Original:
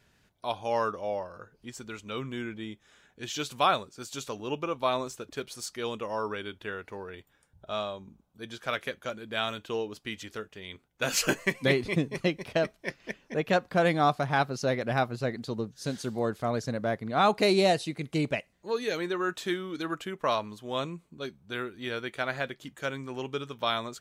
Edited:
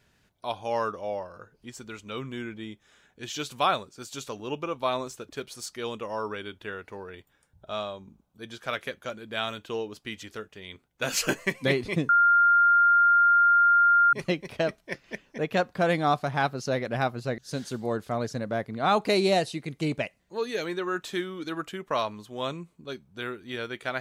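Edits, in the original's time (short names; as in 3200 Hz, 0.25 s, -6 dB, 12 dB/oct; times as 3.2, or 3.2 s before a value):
12.09 add tone 1400 Hz -16 dBFS 2.04 s
15.34–15.71 cut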